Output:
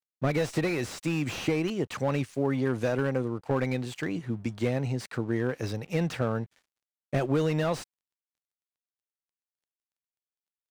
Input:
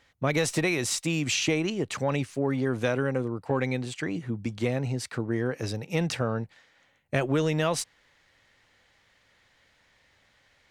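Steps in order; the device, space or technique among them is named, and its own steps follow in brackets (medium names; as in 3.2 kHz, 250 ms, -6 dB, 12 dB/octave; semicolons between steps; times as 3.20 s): early transistor amplifier (crossover distortion -54.5 dBFS; slew-rate limiter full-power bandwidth 53 Hz)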